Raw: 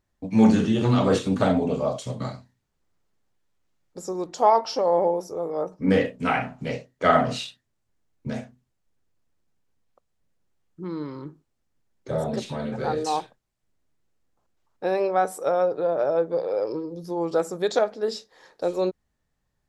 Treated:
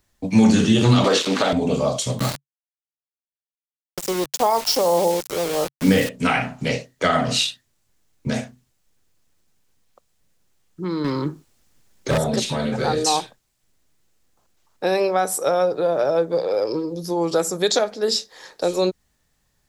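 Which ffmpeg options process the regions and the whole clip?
ffmpeg -i in.wav -filter_complex "[0:a]asettb=1/sr,asplit=3[link_01][link_02][link_03];[link_01]atrim=end=1.044[link_04];[link_02]atrim=start=1.04:end=1.53,asetpts=PTS-STARTPTS,afade=type=in:duration=0.004:curve=qsin,afade=type=out:start_time=0.486:duration=0.004:curve=qsin,acontrast=65,aeval=exprs='val(0)*gte(abs(val(0)),0.0376)':channel_layout=same,highpass=420,lowpass=4700[link_05];[link_03]atrim=start=1.526[link_06];[link_04][link_05]acrossfade=duration=0.004:curve1=hsin:curve2=qsin[link_07];[link_07][link_06]acrossfade=duration=0.004:curve1=qsin:curve2=hsin,asettb=1/sr,asplit=3[link_08][link_09][link_10];[link_08]atrim=end=2.194[link_11];[link_09]atrim=start=2.19:end=6.09,asetpts=PTS-STARTPTS,afade=type=in:duration=0.004:curve=qsin,afade=type=out:start_time=3.896:duration=0.004:curve=qsin,aeval=exprs='val(0)*gte(abs(val(0)),0.02)':channel_layout=same,equalizer=frequency=140:width_type=o:width=0.27:gain=4.5[link_12];[link_10]atrim=start=6.086[link_13];[link_11][link_12]acrossfade=duration=0.004:curve1=hsin:curve2=qsin[link_14];[link_14][link_13]acrossfade=duration=0.004:curve1=qsin:curve2=hsin,asettb=1/sr,asplit=3[link_15][link_16][link_17];[link_15]atrim=end=11.044[link_18];[link_16]atrim=start=11.04:end=12.18,asetpts=PTS-STARTPTS,afade=type=in:duration=0.004:curve=qsin,afade=type=out:start_time=1.136:duration=0.004:curve=qsin,acontrast=63,volume=21dB,asoftclip=hard,volume=-21dB[link_19];[link_17]atrim=start=12.176[link_20];[link_18][link_19]acrossfade=duration=0.004:curve1=hsin:curve2=qsin[link_21];[link_21][link_20]acrossfade=duration=0.004:curve1=qsin:curve2=hsin,highshelf=frequency=2400:gain=10,alimiter=limit=-10.5dB:level=0:latency=1:release=296,acrossover=split=270|3000[link_22][link_23][link_24];[link_23]acompressor=threshold=-31dB:ratio=1.5[link_25];[link_22][link_25][link_24]amix=inputs=3:normalize=0,volume=6.5dB" out.wav

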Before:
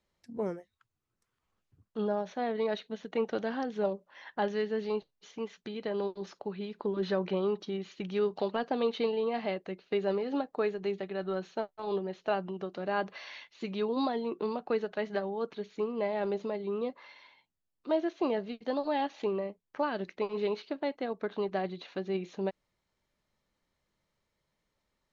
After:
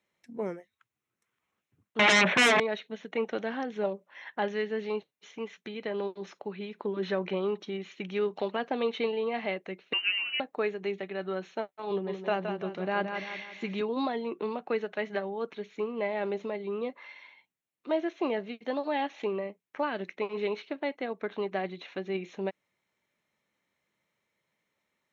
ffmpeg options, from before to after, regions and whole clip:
ffmpeg -i in.wav -filter_complex "[0:a]asettb=1/sr,asplit=3[link_01][link_02][link_03];[link_01]atrim=end=1.994[link_04];[link_02]atrim=start=1.99:end=2.6,asetpts=PTS-STARTPTS,afade=type=in:duration=0.004:curve=qsin,afade=type=out:start_time=0.606:duration=0.004:curve=qsin,lowpass=frequency=2900:width=0.5412,lowpass=frequency=2900:width=1.3066,asubboost=boost=11.5:cutoff=160,aeval=exprs='0.1*sin(PI/2*8.91*val(0)/0.1)':channel_layout=same[link_05];[link_03]atrim=start=2.596[link_06];[link_04][link_05]acrossfade=duration=0.004:curve1=hsin:curve2=qsin[link_07];[link_07][link_06]acrossfade=duration=0.004:curve1=qsin:curve2=hsin,asettb=1/sr,asplit=3[link_08][link_09][link_10];[link_08]atrim=end=9.934[link_11];[link_09]atrim=start=9.93:end=10.4,asetpts=PTS-STARTPTS,afade=type=in:duration=0.004:curve=qsin,afade=type=out:start_time=0.466:duration=0.004:curve=qsin,aeval=exprs='val(0)+0.5*0.00447*sgn(val(0))':channel_layout=same,lowshelf=frequency=320:gain=-11.5,lowpass=frequency=2700:width_type=q:width=0.5098,lowpass=frequency=2700:width_type=q:width=0.6013,lowpass=frequency=2700:width_type=q:width=0.9,lowpass=frequency=2700:width_type=q:width=2.563,afreqshift=-3200[link_12];[link_10]atrim=start=10.396[link_13];[link_11][link_12]acrossfade=duration=0.004:curve1=hsin:curve2=qsin[link_14];[link_14][link_13]acrossfade=duration=0.004:curve1=qsin:curve2=hsin,asettb=1/sr,asplit=3[link_15][link_16][link_17];[link_15]atrim=end=11.904[link_18];[link_16]atrim=start=11.9:end=13.81,asetpts=PTS-STARTPTS,afade=type=in:duration=0.004:curve=qsin,afade=type=out:start_time=1.906:duration=0.004:curve=qsin,equalizer=frequency=100:width=0.82:gain=8.5,aecho=1:1:170|340|510|680|850:0.447|0.197|0.0865|0.0381|0.0167,atrim=end_sample=84231[link_19];[link_17]atrim=start=13.806[link_20];[link_18][link_19]acrossfade=duration=0.004:curve1=hsin:curve2=qsin[link_21];[link_21][link_20]acrossfade=duration=0.004:curve1=qsin:curve2=hsin,highpass=150,equalizer=frequency=2200:width=2.1:gain=7.5,bandreject=frequency=4700:width=5.1" out.wav

